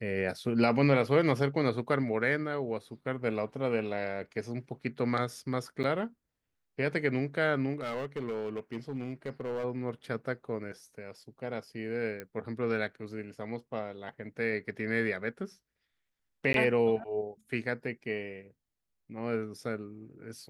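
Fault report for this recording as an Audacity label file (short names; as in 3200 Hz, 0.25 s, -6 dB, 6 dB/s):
5.830000	5.840000	gap 9 ms
7.800000	9.650000	clipped -30 dBFS
12.200000	12.200000	pop -24 dBFS
16.530000	16.540000	gap 12 ms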